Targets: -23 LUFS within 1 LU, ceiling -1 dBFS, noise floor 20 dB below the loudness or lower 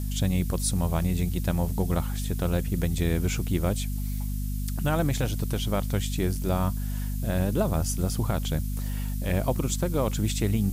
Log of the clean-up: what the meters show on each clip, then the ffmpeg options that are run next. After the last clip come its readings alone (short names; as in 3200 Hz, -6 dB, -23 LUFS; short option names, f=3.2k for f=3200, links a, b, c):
hum 50 Hz; harmonics up to 250 Hz; hum level -27 dBFS; noise floor -30 dBFS; noise floor target -48 dBFS; loudness -28.0 LUFS; peak -12.0 dBFS; loudness target -23.0 LUFS
-> -af "bandreject=f=50:t=h:w=6,bandreject=f=100:t=h:w=6,bandreject=f=150:t=h:w=6,bandreject=f=200:t=h:w=6,bandreject=f=250:t=h:w=6"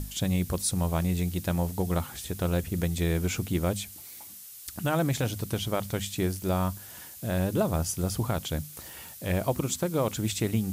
hum none; noise floor -46 dBFS; noise floor target -50 dBFS
-> -af "afftdn=nr=6:nf=-46"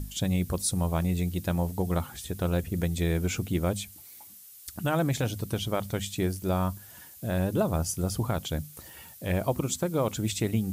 noise floor -49 dBFS; noise floor target -50 dBFS
-> -af "afftdn=nr=6:nf=-49"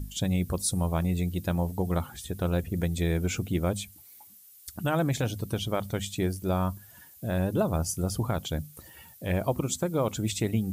noise floor -53 dBFS; loudness -29.5 LUFS; peak -15.0 dBFS; loudness target -23.0 LUFS
-> -af "volume=6.5dB"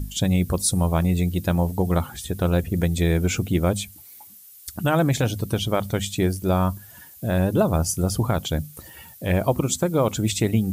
loudness -23.0 LUFS; peak -8.5 dBFS; noise floor -46 dBFS